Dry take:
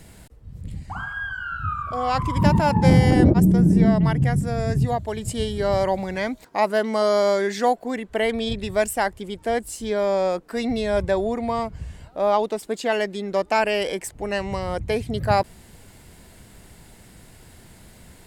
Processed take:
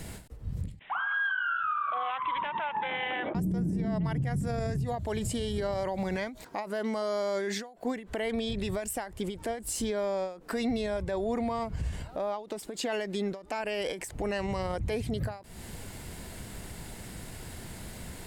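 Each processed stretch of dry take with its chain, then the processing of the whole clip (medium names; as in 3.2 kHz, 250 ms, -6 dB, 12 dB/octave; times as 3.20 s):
0.79–3.35 s: Butterworth band-pass 2.3 kHz, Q 0.52 + careless resampling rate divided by 6×, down none, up filtered
whole clip: compression 12:1, threshold -27 dBFS; peak limiter -28.5 dBFS; endings held to a fixed fall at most 130 dB/s; trim +5 dB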